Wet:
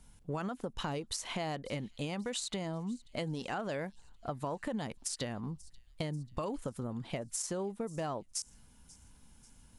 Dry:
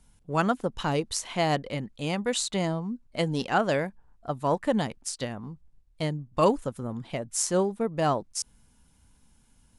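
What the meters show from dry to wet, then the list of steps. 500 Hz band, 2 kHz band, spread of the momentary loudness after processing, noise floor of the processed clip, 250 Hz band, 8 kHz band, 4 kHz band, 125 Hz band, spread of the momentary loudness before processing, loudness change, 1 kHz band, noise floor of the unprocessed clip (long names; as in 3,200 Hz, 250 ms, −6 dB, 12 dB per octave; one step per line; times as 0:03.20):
−11.5 dB, −10.5 dB, 7 LU, −61 dBFS, −9.0 dB, −7.5 dB, −7.5 dB, −8.0 dB, 10 LU, −10.0 dB, −12.5 dB, −63 dBFS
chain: speech leveller 2 s
brickwall limiter −19 dBFS, peak gain reduction 11 dB
downward compressor, threshold −34 dBFS, peak gain reduction 11 dB
on a send: delay with a high-pass on its return 538 ms, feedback 54%, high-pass 3,800 Hz, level −20 dB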